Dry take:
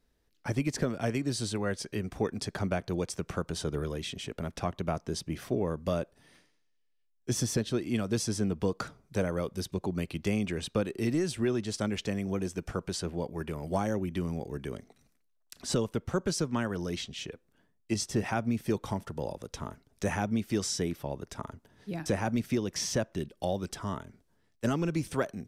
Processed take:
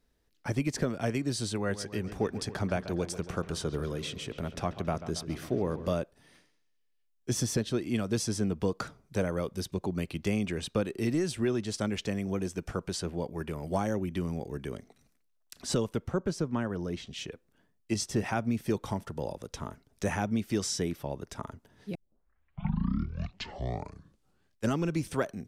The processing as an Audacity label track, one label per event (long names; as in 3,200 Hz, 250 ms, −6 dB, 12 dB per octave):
1.550000	5.930000	delay with a low-pass on its return 138 ms, feedback 63%, low-pass 3,600 Hz, level −13 dB
16.080000	17.070000	high-shelf EQ 2,200 Hz −10.5 dB
21.950000	21.950000	tape start 2.80 s